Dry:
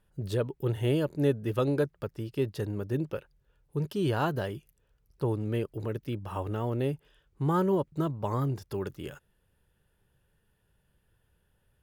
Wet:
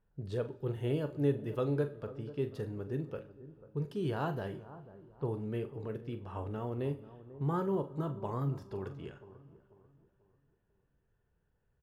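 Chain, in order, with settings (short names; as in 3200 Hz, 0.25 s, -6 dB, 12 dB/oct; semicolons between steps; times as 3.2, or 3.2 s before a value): high shelf 3100 Hz -7.5 dB; doubler 42 ms -11.5 dB; low-pass opened by the level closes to 2100 Hz, open at -28 dBFS; on a send: analogue delay 0.491 s, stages 4096, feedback 37%, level -16 dB; on the sum: two-slope reverb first 0.41 s, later 3 s, from -20 dB, DRR 10 dB; gain -6.5 dB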